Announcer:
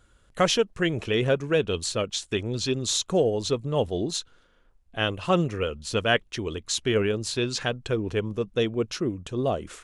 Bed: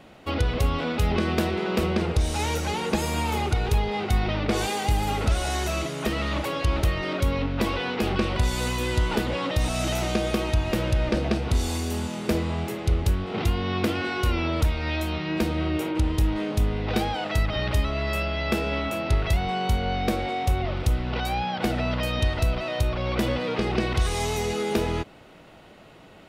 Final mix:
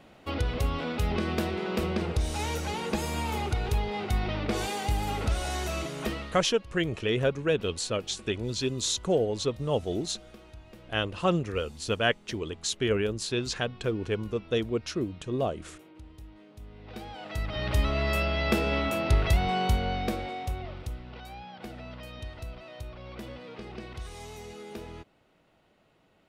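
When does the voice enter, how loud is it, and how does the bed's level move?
5.95 s, −3.0 dB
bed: 0:06.10 −5 dB
0:06.52 −25 dB
0:16.54 −25 dB
0:17.86 −0.5 dB
0:19.61 −0.5 dB
0:21.17 −16.5 dB

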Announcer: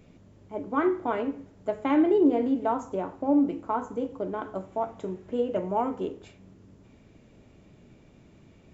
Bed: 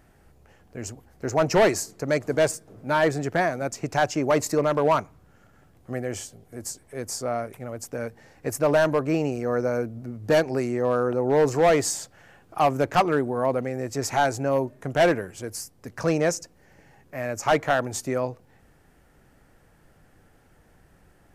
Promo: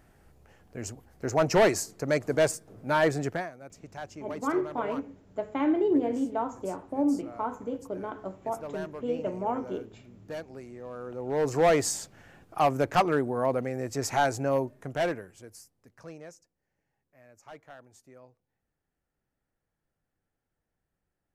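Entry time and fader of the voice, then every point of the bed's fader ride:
3.70 s, −3.5 dB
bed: 0:03.29 −2.5 dB
0:03.51 −18 dB
0:10.93 −18 dB
0:11.59 −3 dB
0:14.55 −3 dB
0:16.52 −26.5 dB

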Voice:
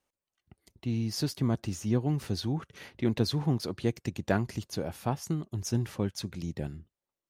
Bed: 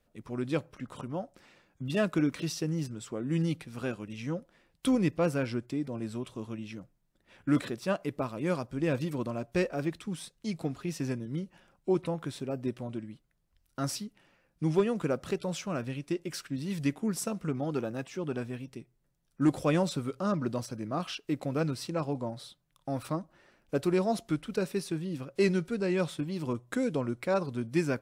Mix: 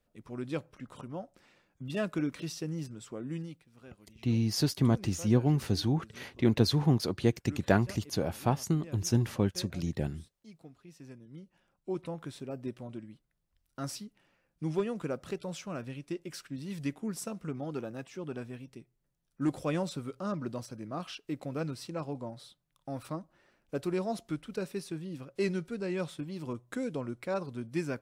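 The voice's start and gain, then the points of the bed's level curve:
3.40 s, +2.5 dB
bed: 0:03.26 −4.5 dB
0:03.61 −18.5 dB
0:10.86 −18.5 dB
0:12.20 −5 dB

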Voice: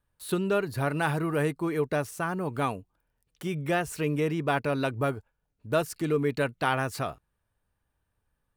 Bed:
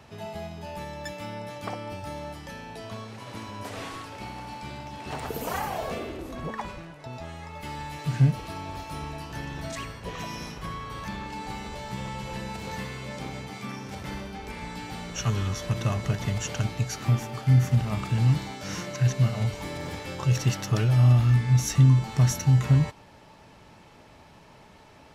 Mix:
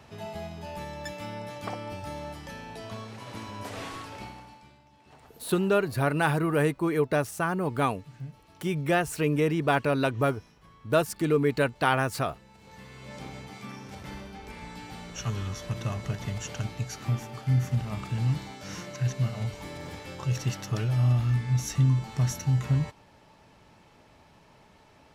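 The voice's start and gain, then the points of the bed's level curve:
5.20 s, +2.5 dB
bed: 0:04.18 −1 dB
0:04.80 −20 dB
0:12.51 −20 dB
0:13.16 −5 dB

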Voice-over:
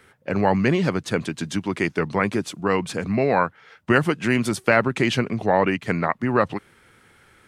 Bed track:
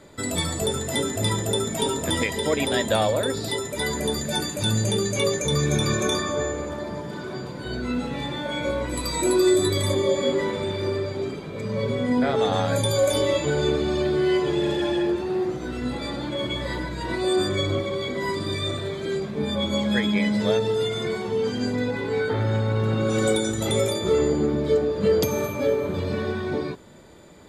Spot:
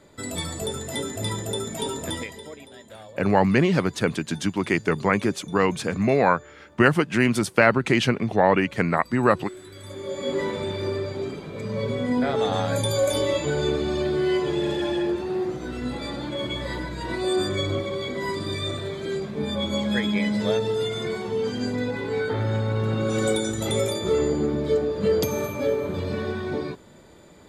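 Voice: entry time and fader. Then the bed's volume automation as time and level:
2.90 s, +0.5 dB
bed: 0:02.08 −4.5 dB
0:02.69 −22.5 dB
0:09.67 −22.5 dB
0:10.39 −1.5 dB

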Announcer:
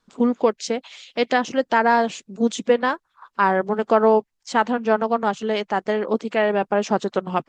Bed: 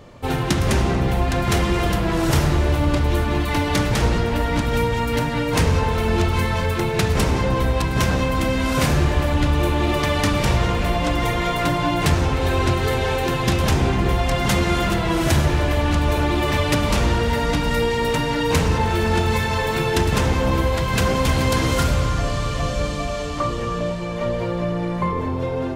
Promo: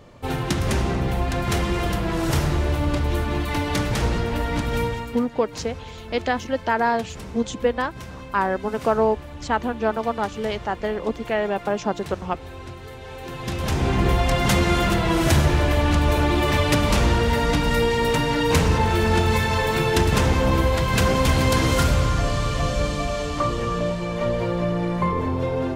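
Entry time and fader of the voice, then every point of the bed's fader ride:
4.95 s, −3.5 dB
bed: 0:04.87 −3.5 dB
0:05.27 −18 dB
0:12.99 −18 dB
0:14.00 0 dB

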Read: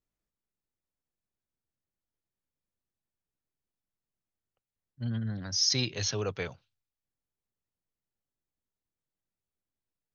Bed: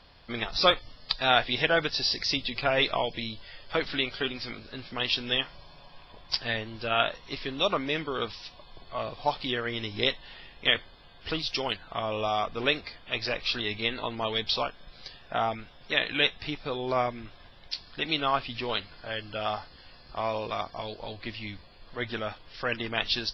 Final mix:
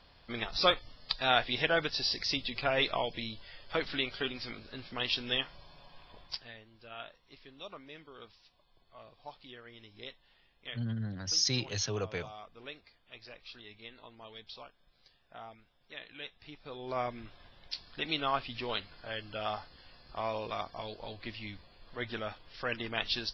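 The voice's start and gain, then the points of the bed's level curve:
5.75 s, −2.5 dB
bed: 0:06.23 −4.5 dB
0:06.52 −20 dB
0:16.27 −20 dB
0:17.14 −5 dB

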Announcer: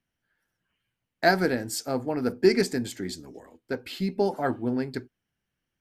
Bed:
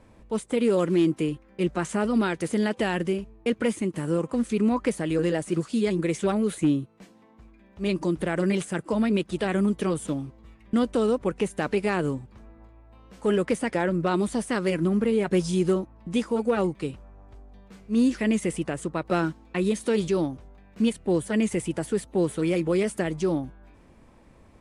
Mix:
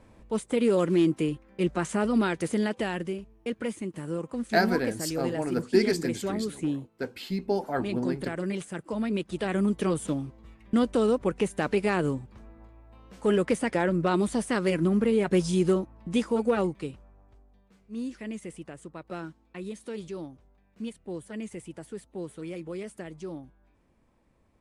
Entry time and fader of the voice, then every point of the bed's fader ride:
3.30 s, −2.5 dB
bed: 0:02.46 −1 dB
0:03.18 −7 dB
0:08.84 −7 dB
0:09.88 −0.5 dB
0:16.48 −0.5 dB
0:17.67 −13 dB

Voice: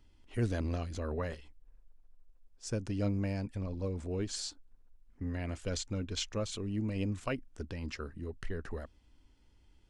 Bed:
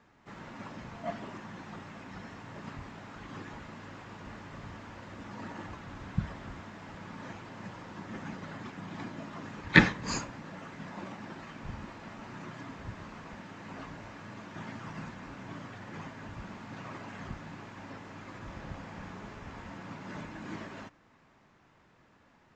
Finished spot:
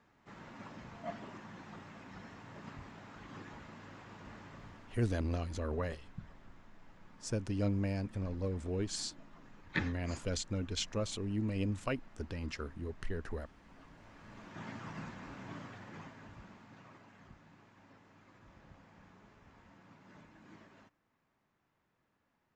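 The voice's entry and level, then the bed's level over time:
4.60 s, −0.5 dB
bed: 0:04.47 −5.5 dB
0:05.30 −16 dB
0:13.78 −16 dB
0:14.67 −3 dB
0:15.57 −3 dB
0:17.14 −16 dB

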